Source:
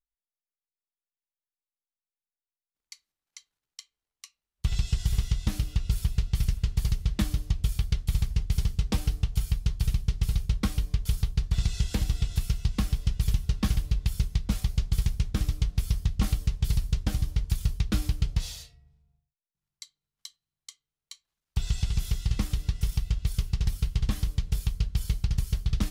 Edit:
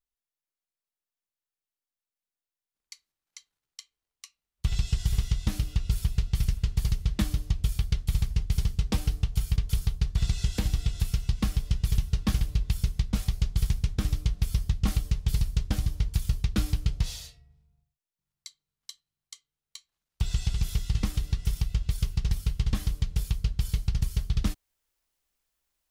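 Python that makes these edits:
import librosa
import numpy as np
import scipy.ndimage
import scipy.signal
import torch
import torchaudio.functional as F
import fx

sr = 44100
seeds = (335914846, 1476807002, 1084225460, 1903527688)

y = fx.edit(x, sr, fx.cut(start_s=9.56, length_s=1.36), tone=tone)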